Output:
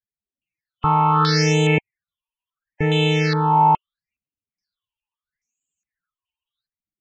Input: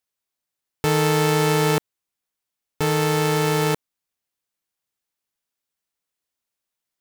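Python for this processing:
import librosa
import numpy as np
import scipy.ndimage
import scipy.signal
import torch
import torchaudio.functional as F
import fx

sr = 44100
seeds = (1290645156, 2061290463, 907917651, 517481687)

y = fx.phaser_stages(x, sr, stages=6, low_hz=440.0, high_hz=1400.0, hz=0.75, feedback_pct=40)
y = fx.spec_topn(y, sr, count=64)
y = fx.filter_held_lowpass(y, sr, hz=2.4, low_hz=890.0, high_hz=6900.0)
y = F.gain(torch.from_numpy(y), 3.0).numpy()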